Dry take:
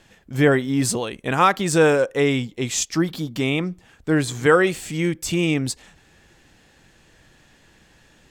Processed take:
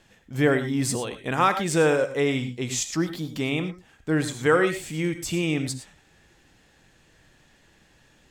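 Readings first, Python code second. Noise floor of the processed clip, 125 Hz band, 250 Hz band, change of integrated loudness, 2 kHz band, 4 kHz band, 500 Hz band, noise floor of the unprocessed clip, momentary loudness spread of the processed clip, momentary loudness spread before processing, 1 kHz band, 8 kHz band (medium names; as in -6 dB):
-60 dBFS, -4.0 dB, -4.0 dB, -4.0 dB, -4.0 dB, -4.0 dB, -4.0 dB, -56 dBFS, 9 LU, 9 LU, -4.0 dB, -4.0 dB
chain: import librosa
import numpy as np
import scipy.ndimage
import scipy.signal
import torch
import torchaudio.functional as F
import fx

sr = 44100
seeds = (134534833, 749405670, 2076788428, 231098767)

y = fx.rev_gated(x, sr, seeds[0], gate_ms=130, shape='rising', drr_db=9.0)
y = F.gain(torch.from_numpy(y), -4.5).numpy()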